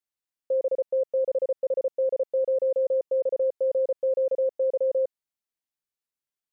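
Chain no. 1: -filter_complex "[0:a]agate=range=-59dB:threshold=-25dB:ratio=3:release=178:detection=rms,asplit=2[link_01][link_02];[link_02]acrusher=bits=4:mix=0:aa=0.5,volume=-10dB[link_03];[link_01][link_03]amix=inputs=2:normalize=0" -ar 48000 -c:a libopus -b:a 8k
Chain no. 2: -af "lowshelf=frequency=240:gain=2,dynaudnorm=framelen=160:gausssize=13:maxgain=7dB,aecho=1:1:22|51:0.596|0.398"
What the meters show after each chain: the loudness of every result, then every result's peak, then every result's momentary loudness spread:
−24.5, −19.0 LKFS; −16.5, −10.0 dBFS; 3, 6 LU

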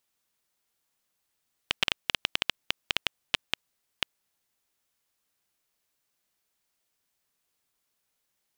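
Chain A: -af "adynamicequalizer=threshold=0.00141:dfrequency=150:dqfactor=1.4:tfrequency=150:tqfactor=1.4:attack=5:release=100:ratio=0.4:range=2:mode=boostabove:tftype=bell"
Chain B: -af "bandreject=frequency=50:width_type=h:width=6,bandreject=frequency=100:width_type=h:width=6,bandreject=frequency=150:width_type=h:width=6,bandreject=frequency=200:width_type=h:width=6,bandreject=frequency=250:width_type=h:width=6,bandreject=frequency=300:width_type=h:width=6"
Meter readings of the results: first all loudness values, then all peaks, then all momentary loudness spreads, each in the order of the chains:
−31.5, −31.5 LKFS; −5.0, −5.0 dBFS; 8, 8 LU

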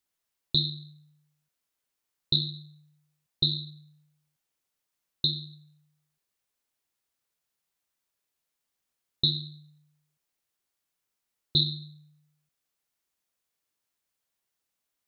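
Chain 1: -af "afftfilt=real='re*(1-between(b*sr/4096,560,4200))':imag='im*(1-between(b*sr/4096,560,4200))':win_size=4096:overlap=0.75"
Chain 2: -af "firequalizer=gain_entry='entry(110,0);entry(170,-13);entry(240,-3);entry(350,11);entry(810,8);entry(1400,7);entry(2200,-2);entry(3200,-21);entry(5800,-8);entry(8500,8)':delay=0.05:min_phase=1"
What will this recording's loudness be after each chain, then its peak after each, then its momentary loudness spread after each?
−37.0, −38.5 LKFS; −18.0, −17.5 dBFS; 20, 19 LU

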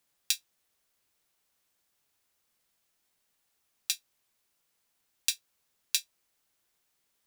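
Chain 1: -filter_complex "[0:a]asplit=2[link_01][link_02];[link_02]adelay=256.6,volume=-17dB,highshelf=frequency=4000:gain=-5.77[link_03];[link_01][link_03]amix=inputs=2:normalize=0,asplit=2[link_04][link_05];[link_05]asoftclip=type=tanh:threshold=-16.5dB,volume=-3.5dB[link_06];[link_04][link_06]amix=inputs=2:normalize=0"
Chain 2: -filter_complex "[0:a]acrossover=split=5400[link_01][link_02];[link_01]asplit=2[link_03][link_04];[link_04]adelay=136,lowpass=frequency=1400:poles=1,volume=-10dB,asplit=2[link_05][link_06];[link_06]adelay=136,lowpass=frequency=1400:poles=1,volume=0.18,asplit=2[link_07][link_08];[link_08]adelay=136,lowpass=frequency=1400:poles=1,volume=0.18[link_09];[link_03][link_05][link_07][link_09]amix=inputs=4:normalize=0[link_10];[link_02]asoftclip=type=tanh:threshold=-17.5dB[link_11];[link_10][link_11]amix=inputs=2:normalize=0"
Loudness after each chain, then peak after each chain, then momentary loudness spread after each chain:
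−29.5, −34.0 LKFS; −1.5, −9.0 dBFS; 20, 5 LU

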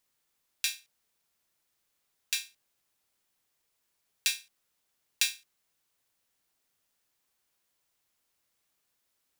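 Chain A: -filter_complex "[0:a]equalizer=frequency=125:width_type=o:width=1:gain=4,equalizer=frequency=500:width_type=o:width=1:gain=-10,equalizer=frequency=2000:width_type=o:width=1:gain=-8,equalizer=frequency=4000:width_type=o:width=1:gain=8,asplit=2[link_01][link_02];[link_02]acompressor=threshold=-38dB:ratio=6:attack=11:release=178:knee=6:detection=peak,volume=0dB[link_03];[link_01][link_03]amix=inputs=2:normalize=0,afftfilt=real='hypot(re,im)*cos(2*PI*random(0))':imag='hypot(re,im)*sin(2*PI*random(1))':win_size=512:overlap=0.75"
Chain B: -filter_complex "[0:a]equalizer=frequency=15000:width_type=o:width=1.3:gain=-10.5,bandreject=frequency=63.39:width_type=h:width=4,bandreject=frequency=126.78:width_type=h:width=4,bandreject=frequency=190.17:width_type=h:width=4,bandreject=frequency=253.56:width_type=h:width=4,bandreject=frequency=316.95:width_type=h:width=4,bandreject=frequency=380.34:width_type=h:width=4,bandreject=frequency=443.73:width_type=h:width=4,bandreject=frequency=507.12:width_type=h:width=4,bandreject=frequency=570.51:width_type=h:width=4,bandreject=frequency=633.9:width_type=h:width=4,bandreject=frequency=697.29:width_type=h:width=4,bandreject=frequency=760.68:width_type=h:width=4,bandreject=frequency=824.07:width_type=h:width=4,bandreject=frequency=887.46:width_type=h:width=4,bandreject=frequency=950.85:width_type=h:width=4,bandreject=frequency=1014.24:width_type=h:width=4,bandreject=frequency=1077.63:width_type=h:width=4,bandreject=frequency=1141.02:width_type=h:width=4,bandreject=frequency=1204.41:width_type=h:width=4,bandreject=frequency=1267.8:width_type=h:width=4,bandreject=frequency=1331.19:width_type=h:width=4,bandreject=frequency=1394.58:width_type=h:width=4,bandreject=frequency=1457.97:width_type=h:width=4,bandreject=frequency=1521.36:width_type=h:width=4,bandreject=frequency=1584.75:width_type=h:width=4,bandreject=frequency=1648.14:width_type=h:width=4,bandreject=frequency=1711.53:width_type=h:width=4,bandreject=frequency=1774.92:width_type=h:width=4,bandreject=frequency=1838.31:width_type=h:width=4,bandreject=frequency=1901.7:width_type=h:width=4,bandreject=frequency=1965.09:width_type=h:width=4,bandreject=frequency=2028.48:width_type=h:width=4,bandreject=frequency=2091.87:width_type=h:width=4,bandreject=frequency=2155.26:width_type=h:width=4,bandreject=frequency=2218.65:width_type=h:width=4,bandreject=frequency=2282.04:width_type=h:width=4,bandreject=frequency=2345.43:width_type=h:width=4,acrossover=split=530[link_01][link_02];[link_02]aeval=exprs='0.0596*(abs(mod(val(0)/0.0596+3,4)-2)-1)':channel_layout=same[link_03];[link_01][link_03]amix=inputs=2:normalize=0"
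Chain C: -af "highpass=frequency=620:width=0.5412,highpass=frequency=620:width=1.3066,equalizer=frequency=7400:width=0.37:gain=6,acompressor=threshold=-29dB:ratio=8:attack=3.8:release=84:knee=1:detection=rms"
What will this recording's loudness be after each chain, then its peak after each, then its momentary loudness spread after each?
−33.0, −37.0, −38.5 LKFS; −12.0, −24.5, −11.5 dBFS; 15, 13, 8 LU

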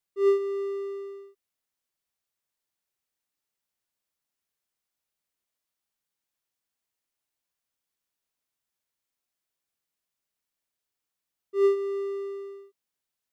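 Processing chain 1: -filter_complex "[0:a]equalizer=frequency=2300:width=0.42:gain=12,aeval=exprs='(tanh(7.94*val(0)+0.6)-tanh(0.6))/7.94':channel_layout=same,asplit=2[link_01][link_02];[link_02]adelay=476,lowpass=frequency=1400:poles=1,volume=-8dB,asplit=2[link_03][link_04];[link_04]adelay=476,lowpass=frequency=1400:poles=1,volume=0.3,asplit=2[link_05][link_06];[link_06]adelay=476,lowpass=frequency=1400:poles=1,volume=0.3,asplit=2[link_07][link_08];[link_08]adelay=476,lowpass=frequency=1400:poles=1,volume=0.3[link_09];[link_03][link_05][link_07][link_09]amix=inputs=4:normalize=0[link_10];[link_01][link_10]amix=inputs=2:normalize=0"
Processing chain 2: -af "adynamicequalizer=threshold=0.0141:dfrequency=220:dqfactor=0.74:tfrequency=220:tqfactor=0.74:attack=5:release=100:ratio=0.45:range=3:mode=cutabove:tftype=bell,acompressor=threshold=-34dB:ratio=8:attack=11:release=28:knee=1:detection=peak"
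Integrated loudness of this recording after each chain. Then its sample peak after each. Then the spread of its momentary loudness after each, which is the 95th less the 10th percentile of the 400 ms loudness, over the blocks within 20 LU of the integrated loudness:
−29.5, −36.5 LKFS; −14.5, −27.5 dBFS; 22, 13 LU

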